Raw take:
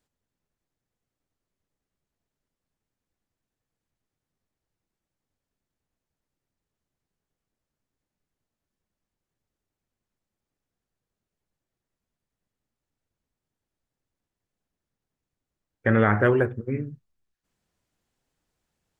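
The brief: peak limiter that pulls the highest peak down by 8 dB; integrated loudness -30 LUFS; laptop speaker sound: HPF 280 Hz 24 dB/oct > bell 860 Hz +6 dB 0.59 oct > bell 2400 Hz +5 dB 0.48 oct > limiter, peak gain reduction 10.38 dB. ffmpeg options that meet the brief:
-af "alimiter=limit=-14dB:level=0:latency=1,highpass=f=280:w=0.5412,highpass=f=280:w=1.3066,equalizer=f=860:t=o:w=0.59:g=6,equalizer=f=2.4k:t=o:w=0.48:g=5,volume=3.5dB,alimiter=limit=-19.5dB:level=0:latency=1"

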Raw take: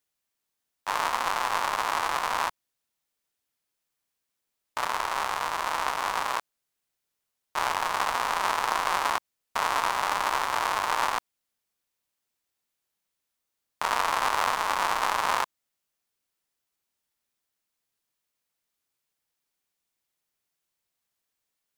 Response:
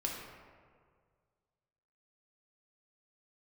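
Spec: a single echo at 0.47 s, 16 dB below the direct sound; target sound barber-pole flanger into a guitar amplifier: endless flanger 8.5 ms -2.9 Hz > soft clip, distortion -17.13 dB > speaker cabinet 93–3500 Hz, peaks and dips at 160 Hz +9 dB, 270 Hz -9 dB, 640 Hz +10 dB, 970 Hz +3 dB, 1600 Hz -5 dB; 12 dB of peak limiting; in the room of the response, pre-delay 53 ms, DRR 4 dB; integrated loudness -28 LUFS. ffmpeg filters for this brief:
-filter_complex "[0:a]alimiter=limit=-21dB:level=0:latency=1,aecho=1:1:470:0.158,asplit=2[a][b];[1:a]atrim=start_sample=2205,adelay=53[c];[b][c]afir=irnorm=-1:irlink=0,volume=-6.5dB[d];[a][d]amix=inputs=2:normalize=0,asplit=2[e][f];[f]adelay=8.5,afreqshift=-2.9[g];[e][g]amix=inputs=2:normalize=1,asoftclip=threshold=-29.5dB,highpass=93,equalizer=f=160:t=q:w=4:g=9,equalizer=f=270:t=q:w=4:g=-9,equalizer=f=640:t=q:w=4:g=10,equalizer=f=970:t=q:w=4:g=3,equalizer=f=1.6k:t=q:w=4:g=-5,lowpass=f=3.5k:w=0.5412,lowpass=f=3.5k:w=1.3066,volume=9dB"

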